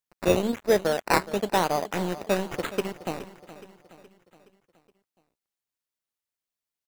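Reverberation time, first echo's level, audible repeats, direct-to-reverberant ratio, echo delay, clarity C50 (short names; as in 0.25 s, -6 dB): none, -15.5 dB, 4, none, 0.42 s, none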